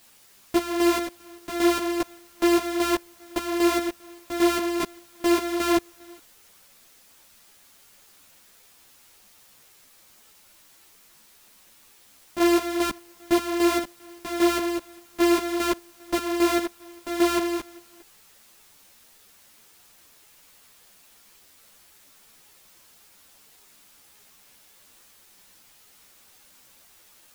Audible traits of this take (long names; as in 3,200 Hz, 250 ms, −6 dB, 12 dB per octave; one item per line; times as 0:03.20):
a buzz of ramps at a fixed pitch in blocks of 128 samples
chopped level 2.5 Hz, depth 60%, duty 45%
a quantiser's noise floor 10 bits, dither triangular
a shimmering, thickened sound